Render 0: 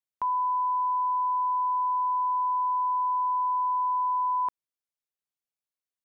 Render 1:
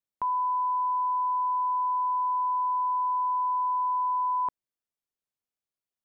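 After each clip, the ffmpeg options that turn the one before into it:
-af "tiltshelf=f=850:g=3.5"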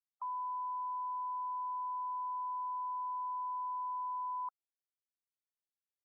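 -filter_complex "[0:a]acrossover=split=1000[a][b];[a]aeval=exprs='val(0)*(1-1/2+1/2*cos(2*PI*3*n/s))':c=same[c];[b]aeval=exprs='val(0)*(1-1/2-1/2*cos(2*PI*3*n/s))':c=same[d];[c][d]amix=inputs=2:normalize=0,afftfilt=real='re*gte(hypot(re,im),0.01)':imag='im*gte(hypot(re,im),0.01)':win_size=1024:overlap=0.75,volume=-5.5dB"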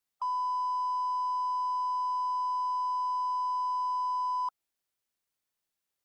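-af "aeval=exprs='0.0188*(cos(1*acos(clip(val(0)/0.0188,-1,1)))-cos(1*PI/2))+0.000531*(cos(3*acos(clip(val(0)/0.0188,-1,1)))-cos(3*PI/2))+0.00106*(cos(5*acos(clip(val(0)/0.0188,-1,1)))-cos(5*PI/2))+0.000211*(cos(8*acos(clip(val(0)/0.0188,-1,1)))-cos(8*PI/2))':c=same,volume=8dB"

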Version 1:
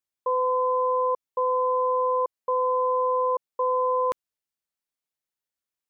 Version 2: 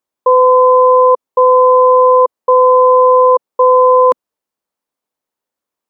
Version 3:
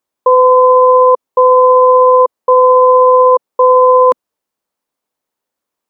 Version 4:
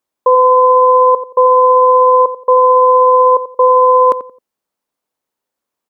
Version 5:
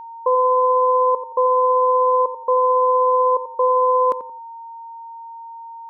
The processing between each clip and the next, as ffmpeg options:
-af "equalizer=f=250:t=o:w=1:g=9,equalizer=f=500:t=o:w=1:g=9,equalizer=f=1k:t=o:w=1:g=9,volume=4dB"
-af "alimiter=limit=-4.5dB:level=0:latency=1:release=15,volume=3.5dB"
-filter_complex "[0:a]asplit=2[a][b];[b]adelay=88,lowpass=f=900:p=1,volume=-10.5dB,asplit=2[c][d];[d]adelay=88,lowpass=f=900:p=1,volume=0.31,asplit=2[e][f];[f]adelay=88,lowpass=f=900:p=1,volume=0.31[g];[a][c][e][g]amix=inputs=4:normalize=0,volume=-1dB"
-af "aeval=exprs='val(0)+0.0562*sin(2*PI*920*n/s)':c=same,volume=-8dB"

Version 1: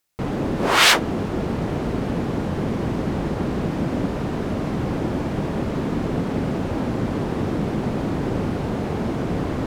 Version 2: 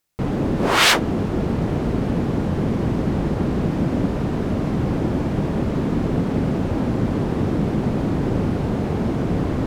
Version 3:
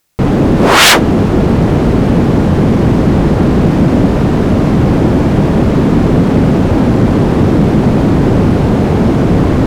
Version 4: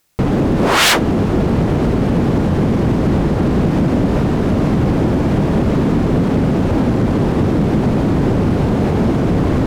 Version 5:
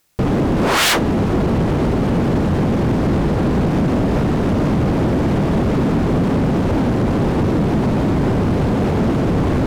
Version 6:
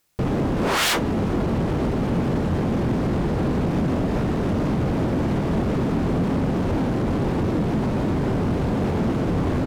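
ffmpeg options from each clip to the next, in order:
-af "lowshelf=f=370:g=5.5,volume=-1dB"
-af "aeval=exprs='0.891*sin(PI/2*2.82*val(0)/0.891)':c=same"
-af "alimiter=limit=-7.5dB:level=0:latency=1:release=230"
-af "asoftclip=type=hard:threshold=-13dB"
-filter_complex "[0:a]asplit=2[a][b];[b]adelay=23,volume=-11dB[c];[a][c]amix=inputs=2:normalize=0,volume=-6dB"

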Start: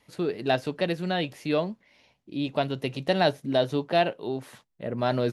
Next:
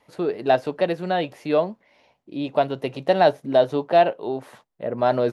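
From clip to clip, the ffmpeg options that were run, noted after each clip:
-af "equalizer=f=710:w=0.51:g=11,volume=-3.5dB"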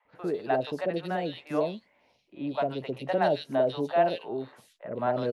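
-filter_complex "[0:a]acrossover=split=640|2700[a][b][c];[a]adelay=50[d];[c]adelay=150[e];[d][b][e]amix=inputs=3:normalize=0,volume=-5dB"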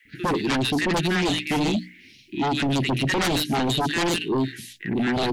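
-af "asuperstop=centerf=780:order=12:qfactor=0.59,bandreject=f=60:t=h:w=6,bandreject=f=120:t=h:w=6,bandreject=f=180:t=h:w=6,bandreject=f=240:t=h:w=6,bandreject=f=300:t=h:w=6,aeval=exprs='0.0841*sin(PI/2*5.01*val(0)/0.0841)':c=same,volume=2.5dB"

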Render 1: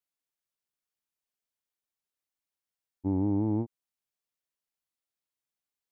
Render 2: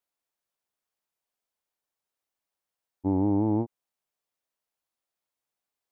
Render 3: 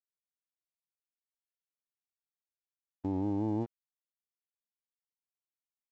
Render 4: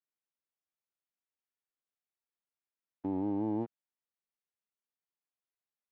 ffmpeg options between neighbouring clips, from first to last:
-af "equalizer=f=720:t=o:w=1.9:g=7,volume=1dB"
-af "aresample=16000,aeval=exprs='sgn(val(0))*max(abs(val(0))-0.00355,0)':c=same,aresample=44100,alimiter=limit=-23dB:level=0:latency=1"
-af "highpass=150,lowpass=2.6k"

